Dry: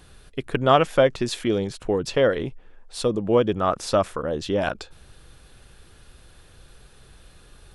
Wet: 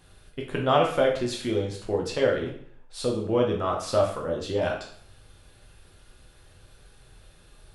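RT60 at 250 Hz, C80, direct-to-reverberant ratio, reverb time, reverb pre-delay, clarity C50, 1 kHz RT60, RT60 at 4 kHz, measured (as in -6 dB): 0.60 s, 10.0 dB, -1.5 dB, 0.55 s, 4 ms, 6.5 dB, 0.55 s, 0.50 s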